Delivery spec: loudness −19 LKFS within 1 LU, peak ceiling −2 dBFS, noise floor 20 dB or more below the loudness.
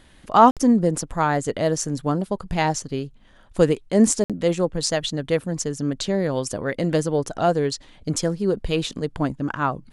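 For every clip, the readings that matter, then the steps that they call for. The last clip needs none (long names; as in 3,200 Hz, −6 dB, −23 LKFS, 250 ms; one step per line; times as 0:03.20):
number of dropouts 2; longest dropout 57 ms; integrated loudness −22.5 LKFS; sample peak −2.0 dBFS; target loudness −19.0 LKFS
→ repair the gap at 0:00.51/0:04.24, 57 ms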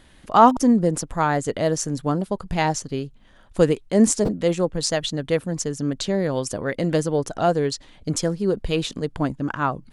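number of dropouts 0; integrated loudness −22.5 LKFS; sample peak −2.0 dBFS; target loudness −19.0 LKFS
→ level +3.5 dB
brickwall limiter −2 dBFS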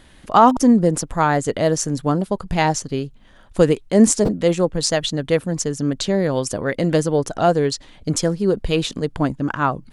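integrated loudness −19.0 LKFS; sample peak −2.0 dBFS; background noise floor −48 dBFS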